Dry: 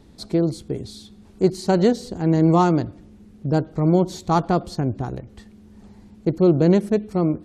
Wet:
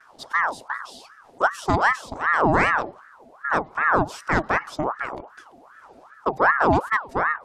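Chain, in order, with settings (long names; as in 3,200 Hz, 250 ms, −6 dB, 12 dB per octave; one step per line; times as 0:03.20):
pitch vibrato 0.41 Hz 20 cents
ring modulator whose carrier an LFO sweeps 1,000 Hz, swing 55%, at 2.6 Hz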